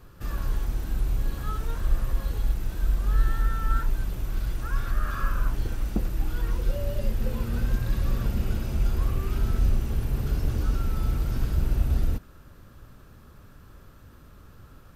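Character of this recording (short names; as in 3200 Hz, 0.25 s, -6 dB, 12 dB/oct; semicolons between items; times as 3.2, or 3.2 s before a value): noise floor -50 dBFS; spectral tilt -7.0 dB/oct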